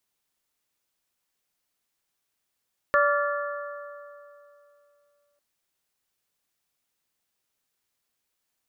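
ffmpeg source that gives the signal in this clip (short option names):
-f lavfi -i "aevalsrc='0.0944*pow(10,-3*t/2.92)*sin(2*PI*579*t)+0.0841*pow(10,-3*t/2.372)*sin(2*PI*1158*t)+0.075*pow(10,-3*t/2.246)*sin(2*PI*1389.6*t)+0.0668*pow(10,-3*t/2.1)*sin(2*PI*1737*t)':d=2.45:s=44100"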